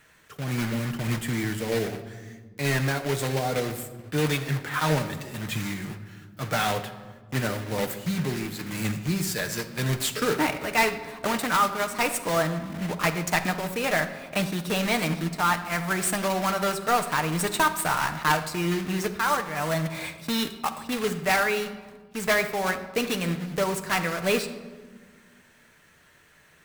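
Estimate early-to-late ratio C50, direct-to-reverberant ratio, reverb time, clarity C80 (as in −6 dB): 11.0 dB, 6.0 dB, 1.5 s, 12.5 dB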